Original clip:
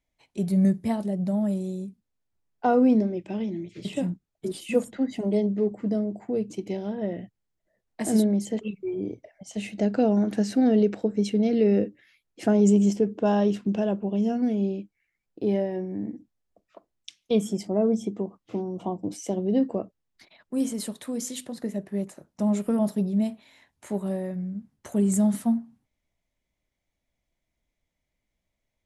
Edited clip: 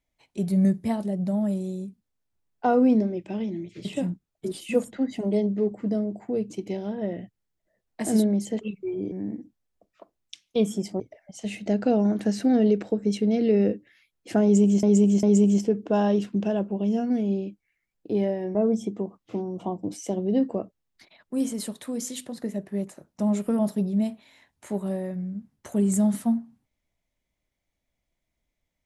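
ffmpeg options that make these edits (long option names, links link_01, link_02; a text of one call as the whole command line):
ffmpeg -i in.wav -filter_complex "[0:a]asplit=6[link_01][link_02][link_03][link_04][link_05][link_06];[link_01]atrim=end=9.122[link_07];[link_02]atrim=start=15.868:end=17.752[link_08];[link_03]atrim=start=9.118:end=12.952[link_09];[link_04]atrim=start=12.548:end=12.952[link_10];[link_05]atrim=start=12.548:end=15.872[link_11];[link_06]atrim=start=17.748[link_12];[link_07][link_08]acrossfade=duration=0.004:curve1=hsin:curve2=hsin[link_13];[link_13][link_09]acrossfade=duration=0.004:curve1=hsin:curve2=hsin[link_14];[link_14][link_10]acrossfade=duration=0.004:curve1=hsin:curve2=hsin[link_15];[link_15][link_11]acrossfade=duration=0.004:curve1=hsin:curve2=hsin[link_16];[link_16][link_12]acrossfade=duration=0.004:curve1=hsin:curve2=hsin" out.wav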